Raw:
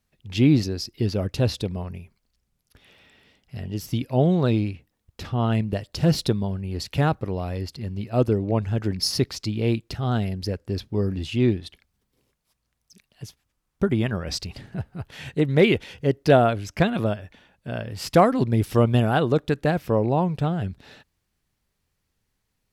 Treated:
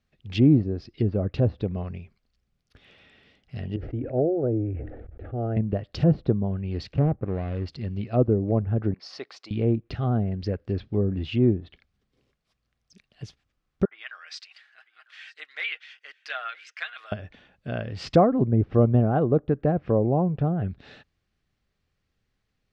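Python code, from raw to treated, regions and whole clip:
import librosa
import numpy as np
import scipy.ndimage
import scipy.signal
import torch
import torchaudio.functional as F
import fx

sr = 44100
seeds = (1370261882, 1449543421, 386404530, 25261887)

y = fx.chain(x, sr, fx.lowpass(hz=1400.0, slope=24),
    fx.fixed_phaser(hz=440.0, stages=4),
    fx.sustainer(db_per_s=34.0), at=(3.76, 5.57))
y = fx.chain(y, sr, fx.median_filter(points=41),
    fx.lowpass(hz=4300.0, slope=12), at=(6.93, 7.66))
y = fx.chain(y, sr, fx.cheby1_highpass(hz=820.0, order=2),
    fx.high_shelf(hz=2000.0, db=-10.5), at=(8.94, 9.51))
y = fx.chain(y, sr, fx.ladder_highpass(hz=1200.0, resonance_pct=30),
    fx.comb(ms=6.4, depth=0.48),
    fx.echo_single(ms=949, db=-22.0), at=(13.85, 17.12))
y = fx.env_lowpass_down(y, sr, base_hz=820.0, full_db=-19.5)
y = scipy.signal.sosfilt(scipy.signal.butter(2, 4500.0, 'lowpass', fs=sr, output='sos'), y)
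y = fx.notch(y, sr, hz=930.0, q=7.0)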